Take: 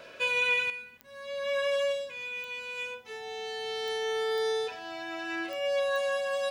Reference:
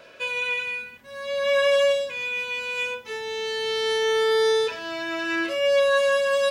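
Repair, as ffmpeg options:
-af "adeclick=t=4,bandreject=f=750:w=30,asetnsamples=n=441:p=0,asendcmd='0.7 volume volume 9dB',volume=1"

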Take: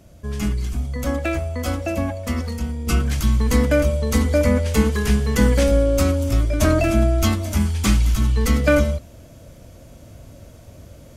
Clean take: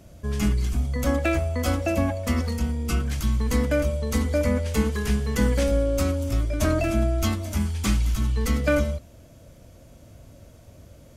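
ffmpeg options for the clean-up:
-af "asetnsamples=n=441:p=0,asendcmd='2.87 volume volume -5.5dB',volume=1"

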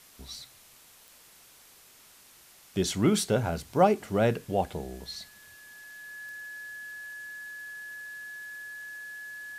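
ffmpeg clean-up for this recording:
-af "adeclick=t=4,bandreject=f=1700:w=30,afwtdn=0.002"

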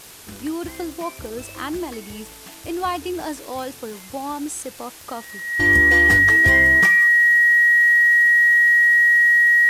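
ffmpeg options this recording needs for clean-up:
-af "adeclick=t=4,bandreject=f=1900:w=30,afftdn=nr=23:nf=-41"

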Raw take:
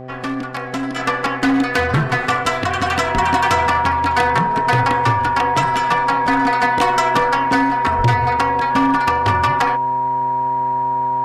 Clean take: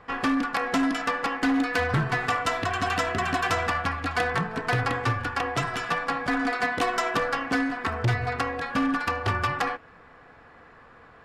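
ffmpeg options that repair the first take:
-filter_complex "[0:a]bandreject=f=128.2:t=h:w=4,bandreject=f=256.4:t=h:w=4,bandreject=f=384.6:t=h:w=4,bandreject=f=512.8:t=h:w=4,bandreject=f=641:t=h:w=4,bandreject=f=769.2:t=h:w=4,bandreject=f=950:w=30,asplit=3[s0][s1][s2];[s0]afade=t=out:st=3.14:d=0.02[s3];[s1]highpass=f=140:w=0.5412,highpass=f=140:w=1.3066,afade=t=in:st=3.14:d=0.02,afade=t=out:st=3.26:d=0.02[s4];[s2]afade=t=in:st=3.26:d=0.02[s5];[s3][s4][s5]amix=inputs=3:normalize=0,asplit=3[s6][s7][s8];[s6]afade=t=out:st=7.97:d=0.02[s9];[s7]highpass=f=140:w=0.5412,highpass=f=140:w=1.3066,afade=t=in:st=7.97:d=0.02,afade=t=out:st=8.09:d=0.02[s10];[s8]afade=t=in:st=8.09:d=0.02[s11];[s9][s10][s11]amix=inputs=3:normalize=0,asetnsamples=n=441:p=0,asendcmd='0.96 volume volume -7.5dB',volume=1"

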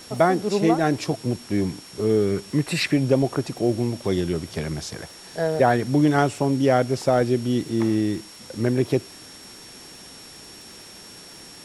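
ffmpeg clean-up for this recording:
-af "adeclick=t=4,bandreject=f=5500:w=30,afwtdn=0.0063"

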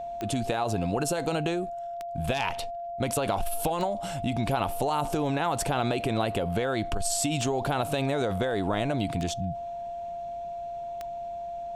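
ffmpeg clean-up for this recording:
-af "adeclick=t=4,bandreject=f=690:w=30"

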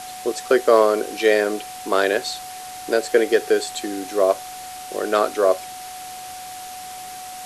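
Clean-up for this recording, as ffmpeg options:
-af "bandreject=f=740:w=30,afftdn=nr=29:nf=-35"

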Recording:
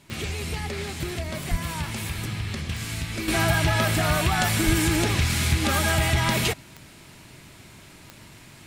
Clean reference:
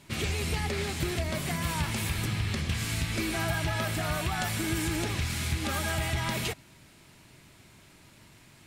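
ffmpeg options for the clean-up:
-filter_complex "[0:a]adeclick=t=4,asplit=3[s0][s1][s2];[s0]afade=t=out:st=1.5:d=0.02[s3];[s1]highpass=f=140:w=0.5412,highpass=f=140:w=1.3066,afade=t=in:st=1.5:d=0.02,afade=t=out:st=1.62:d=0.02[s4];[s2]afade=t=in:st=1.62:d=0.02[s5];[s3][s4][s5]amix=inputs=3:normalize=0,asplit=3[s6][s7][s8];[s6]afade=t=out:st=4.65:d=0.02[s9];[s7]highpass=f=140:w=0.5412,highpass=f=140:w=1.3066,afade=t=in:st=4.65:d=0.02,afade=t=out:st=4.77:d=0.02[s10];[s8]afade=t=in:st=4.77:d=0.02[s11];[s9][s10][s11]amix=inputs=3:normalize=0,asetnsamples=n=441:p=0,asendcmd='3.28 volume volume -8dB',volume=1"

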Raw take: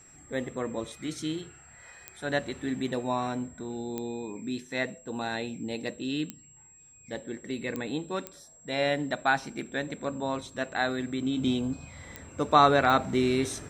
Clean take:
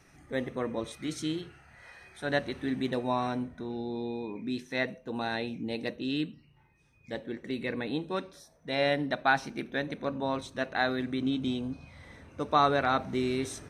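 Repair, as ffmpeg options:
-af "adeclick=t=4,bandreject=f=7600:w=30,asetnsamples=n=441:p=0,asendcmd='11.37 volume volume -4.5dB',volume=1"

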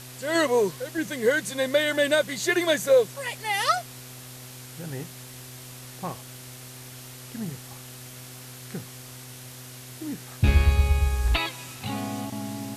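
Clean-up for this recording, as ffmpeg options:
-af "adeclick=t=4,bandreject=f=126.4:t=h:w=4,bandreject=f=252.8:t=h:w=4,bandreject=f=379.2:t=h:w=4,bandreject=f=505.6:t=h:w=4,bandreject=f=632:t=h:w=4,bandreject=f=758.4:t=h:w=4,afwtdn=0.0071"

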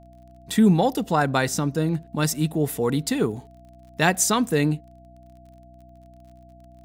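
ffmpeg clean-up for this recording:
-af "adeclick=t=4,bandreject=f=62:t=h:w=4,bandreject=f=124:t=h:w=4,bandreject=f=186:t=h:w=4,bandreject=f=248:t=h:w=4,bandreject=f=310:t=h:w=4,bandreject=f=680:w=30"

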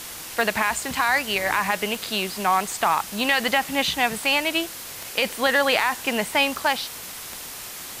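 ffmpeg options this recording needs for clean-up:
-af "adeclick=t=4,afwtdn=0.018"

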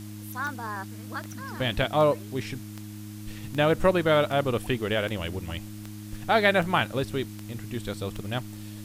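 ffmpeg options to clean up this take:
-af "adeclick=t=4,bandreject=f=104.8:t=h:w=4,bandreject=f=209.6:t=h:w=4,bandreject=f=314.4:t=h:w=4,afwtdn=0.0032"

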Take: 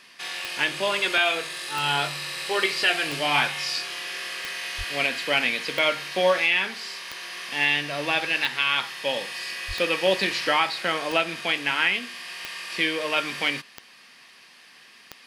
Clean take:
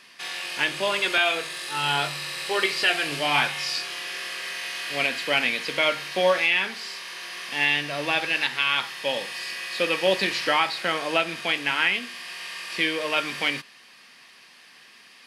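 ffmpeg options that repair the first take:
-filter_complex "[0:a]adeclick=t=4,asplit=3[s0][s1][s2];[s0]afade=t=out:st=4.77:d=0.02[s3];[s1]highpass=f=140:w=0.5412,highpass=f=140:w=1.3066,afade=t=in:st=4.77:d=0.02,afade=t=out:st=4.89:d=0.02[s4];[s2]afade=t=in:st=4.89:d=0.02[s5];[s3][s4][s5]amix=inputs=3:normalize=0,asplit=3[s6][s7][s8];[s6]afade=t=out:st=9.67:d=0.02[s9];[s7]highpass=f=140:w=0.5412,highpass=f=140:w=1.3066,afade=t=in:st=9.67:d=0.02,afade=t=out:st=9.79:d=0.02[s10];[s8]afade=t=in:st=9.79:d=0.02[s11];[s9][s10][s11]amix=inputs=3:normalize=0"

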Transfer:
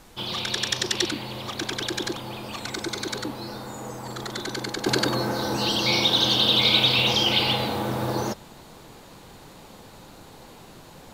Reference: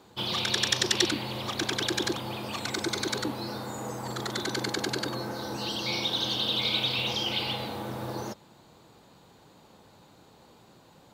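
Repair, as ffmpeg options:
-af "agate=range=0.0891:threshold=0.0112,asetnsamples=n=441:p=0,asendcmd='4.86 volume volume -8.5dB',volume=1"

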